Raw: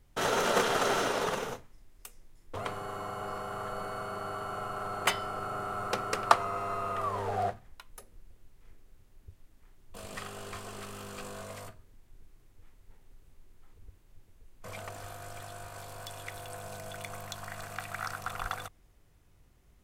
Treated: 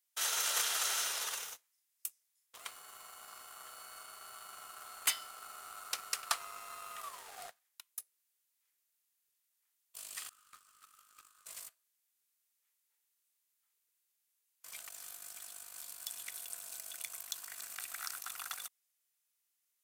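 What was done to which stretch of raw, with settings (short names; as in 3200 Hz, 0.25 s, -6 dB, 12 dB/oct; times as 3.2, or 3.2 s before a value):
10.29–11.46 ladder high-pass 1200 Hz, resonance 85%
whole clip: HPF 920 Hz 6 dB/oct; differentiator; sample leveller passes 2; gain -1.5 dB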